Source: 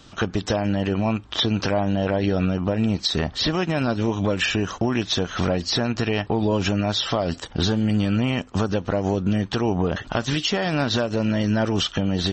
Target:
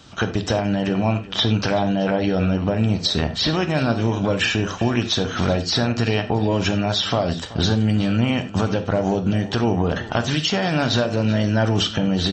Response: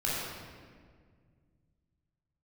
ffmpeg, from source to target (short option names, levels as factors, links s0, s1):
-filter_complex "[0:a]highpass=55,aecho=1:1:380:0.133,asplit=2[s0][s1];[1:a]atrim=start_sample=2205,atrim=end_sample=4410[s2];[s1][s2]afir=irnorm=-1:irlink=0,volume=0.266[s3];[s0][s3]amix=inputs=2:normalize=0"